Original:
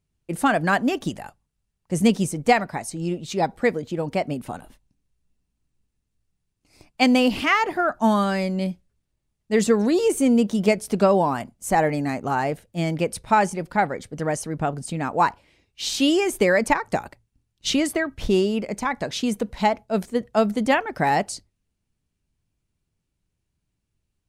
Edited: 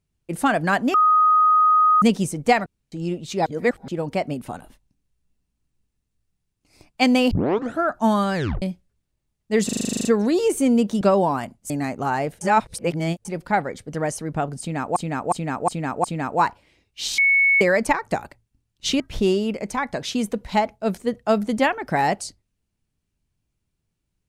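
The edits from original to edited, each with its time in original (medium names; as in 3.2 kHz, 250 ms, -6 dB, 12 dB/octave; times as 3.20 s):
0.94–2.02 s: bleep 1.25 kHz -12.5 dBFS
2.66–2.92 s: room tone
3.46–3.88 s: reverse
7.31 s: tape start 0.52 s
8.35 s: tape stop 0.27 s
9.65 s: stutter 0.04 s, 11 plays
10.61–10.98 s: delete
11.67–11.95 s: delete
12.66–13.50 s: reverse
14.85–15.21 s: loop, 5 plays
15.99–16.42 s: bleep 2.21 kHz -13.5 dBFS
17.81–18.08 s: delete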